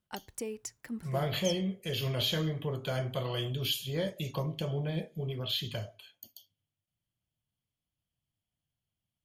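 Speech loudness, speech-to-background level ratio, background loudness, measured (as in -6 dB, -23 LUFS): -33.5 LUFS, 8.5 dB, -42.0 LUFS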